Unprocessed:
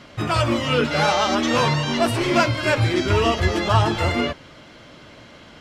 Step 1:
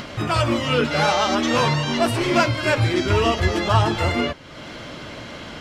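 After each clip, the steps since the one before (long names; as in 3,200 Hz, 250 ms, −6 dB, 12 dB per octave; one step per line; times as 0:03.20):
upward compression, threshold −25 dBFS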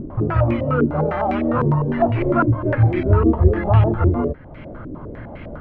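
spectral tilt −4 dB per octave
low-pass on a step sequencer 9.9 Hz 350–2,300 Hz
level −7 dB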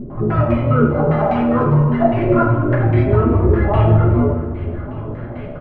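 single-tap delay 1,173 ms −18.5 dB
convolution reverb RT60 1.4 s, pre-delay 5 ms, DRR −4 dB
level −3.5 dB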